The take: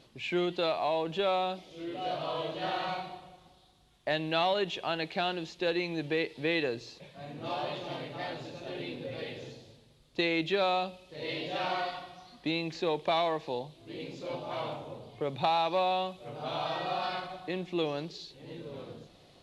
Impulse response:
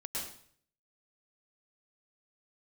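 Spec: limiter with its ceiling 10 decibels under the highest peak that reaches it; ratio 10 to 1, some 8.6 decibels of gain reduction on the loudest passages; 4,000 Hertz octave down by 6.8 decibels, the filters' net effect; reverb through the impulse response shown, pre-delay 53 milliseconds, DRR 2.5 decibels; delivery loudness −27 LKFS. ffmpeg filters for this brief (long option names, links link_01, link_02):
-filter_complex "[0:a]equalizer=frequency=4000:width_type=o:gain=-8.5,acompressor=threshold=-33dB:ratio=10,alimiter=level_in=8dB:limit=-24dB:level=0:latency=1,volume=-8dB,asplit=2[link_01][link_02];[1:a]atrim=start_sample=2205,adelay=53[link_03];[link_02][link_03]afir=irnorm=-1:irlink=0,volume=-4dB[link_04];[link_01][link_04]amix=inputs=2:normalize=0,volume=13dB"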